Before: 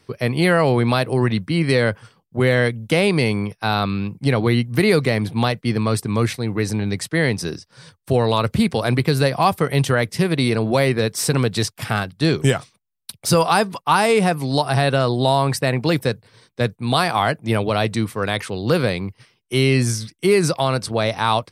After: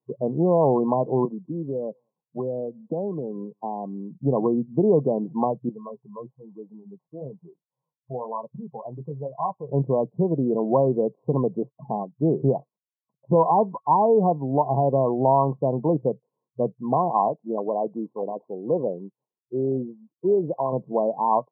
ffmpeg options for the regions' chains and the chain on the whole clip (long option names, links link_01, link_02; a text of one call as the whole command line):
ffmpeg -i in.wav -filter_complex "[0:a]asettb=1/sr,asplit=3[link_01][link_02][link_03];[link_01]atrim=end=1.254[link_04];[link_02]atrim=start=1.25:end=4.11,asetpts=PTS-STARTPTS,afade=type=in:duration=0.004:curve=qsin,afade=type=out:start_time=2.856:duration=0.004:curve=qsin,equalizer=frequency=2600:width=1.5:gain=-12.5,acrossover=split=270|650[link_05][link_06][link_07];[link_05]acompressor=threshold=-30dB:ratio=4[link_08];[link_06]acompressor=threshold=-31dB:ratio=4[link_09];[link_07]acompressor=threshold=-29dB:ratio=4[link_10];[link_08][link_09][link_10]amix=inputs=3:normalize=0,aecho=1:1:195:0.0668,atrim=end_sample=126126[link_11];[link_03]atrim=start=4.106[link_12];[link_04][link_11]acrossfade=duration=0.004:curve1=hsin:curve2=qsin[link_13];[link_13][link_12]acrossfade=duration=0.004:curve1=qsin:curve2=hsin,asettb=1/sr,asplit=3[link_14][link_15][link_16];[link_14]atrim=end=5.694[link_17];[link_15]atrim=start=5.69:end=9.68,asetpts=PTS-STARTPTS,afade=type=in:duration=0.004:curve=qsin,afade=type=out:start_time=3.986:duration=0.004:curve=qsin,equalizer=frequency=290:width=0.58:gain=-11.5,flanger=delay=2.8:depth=9:regen=-52:speed=1.1:shape=triangular[link_18];[link_16]atrim=start=9.676[link_19];[link_17][link_18]acrossfade=duration=0.004:curve1=hsin:curve2=qsin[link_20];[link_20][link_19]acrossfade=duration=0.004:curve1=qsin:curve2=hsin,asettb=1/sr,asplit=3[link_21][link_22][link_23];[link_21]atrim=end=17.284[link_24];[link_22]atrim=start=17.28:end=20.73,asetpts=PTS-STARTPTS,afade=type=in:duration=0.004:curve=qsin,afade=type=out:start_time=3.446:duration=0.004:curve=qsin,lowpass=1000,acrusher=samples=18:mix=1:aa=0.000001:lfo=1:lforange=10.8:lforate=1.3,aemphasis=mode=production:type=bsi[link_25];[link_23]atrim=start=20.726[link_26];[link_24][link_25]acrossfade=duration=0.004:curve1=hsin:curve2=qsin[link_27];[link_27][link_26]acrossfade=duration=0.004:curve1=qsin:curve2=hsin,afftfilt=real='re*between(b*sr/4096,120,1100)':imag='im*between(b*sr/4096,120,1100)':win_size=4096:overlap=0.75,afftdn=noise_reduction=24:noise_floor=-27,lowshelf=frequency=190:gain=-8.5" out.wav